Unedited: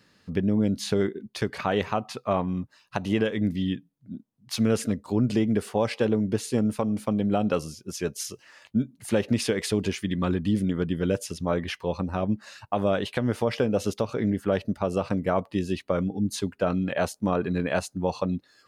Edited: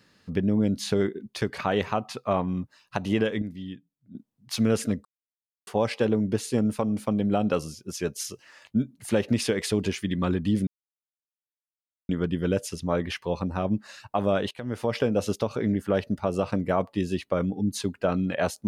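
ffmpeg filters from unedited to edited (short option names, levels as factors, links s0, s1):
-filter_complex "[0:a]asplit=7[s0][s1][s2][s3][s4][s5][s6];[s0]atrim=end=3.422[s7];[s1]atrim=start=3.418:end=4.152,asetpts=PTS-STARTPTS,volume=0.316[s8];[s2]atrim=start=4.148:end=5.05,asetpts=PTS-STARTPTS,afade=t=out:st=0.898:d=0.004:c=hsin[s9];[s3]atrim=start=5.05:end=5.67,asetpts=PTS-STARTPTS,volume=0[s10];[s4]atrim=start=5.67:end=10.67,asetpts=PTS-STARTPTS,afade=t=in:d=0.004:c=hsin,afade=t=out:st=4.996:d=0.004:c=hsin,apad=pad_dur=1.42[s11];[s5]atrim=start=10.67:end=13.09,asetpts=PTS-STARTPTS,afade=t=in:d=0.004:c=hsin,afade=t=out:st=2.416:d=0.004:c=hsin:silence=0.141254[s12];[s6]atrim=start=13.09,asetpts=PTS-STARTPTS,afade=t=in:d=0.45:silence=0.141254[s13];[s7][s8]acrossfade=d=0.004:c1=hsin:c2=hsin[s14];[s9][s10][s11][s12][s13]concat=n=5:v=0:a=1[s15];[s14][s15]acrossfade=d=0.004:c1=hsin:c2=hsin"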